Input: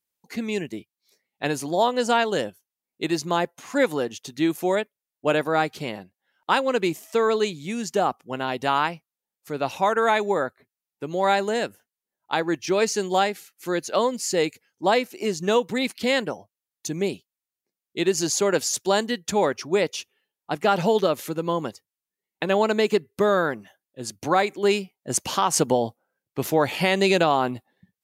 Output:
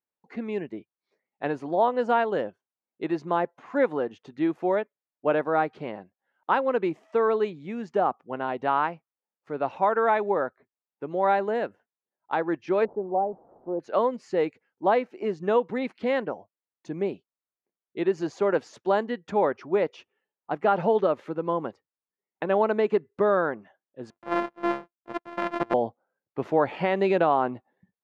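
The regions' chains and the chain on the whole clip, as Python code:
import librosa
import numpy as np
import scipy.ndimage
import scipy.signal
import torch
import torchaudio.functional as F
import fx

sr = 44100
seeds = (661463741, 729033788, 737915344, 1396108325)

y = fx.chain(x, sr, fx.delta_mod(bps=64000, step_db=-30.5),
    fx.steep_lowpass(hz=820.0, slope=36),
    fx.tilt_eq(slope=1.5), at=(12.85, 13.8))
y = fx.chain(y, sr, fx.sample_sort(block=128),
    fx.highpass(hz=190.0, slope=12),
    fx.power_curve(exponent=1.4), at=(24.1, 25.74))
y = scipy.signal.sosfilt(scipy.signal.butter(2, 1400.0, 'lowpass', fs=sr, output='sos'), y)
y = fx.low_shelf(y, sr, hz=180.0, db=-11.0)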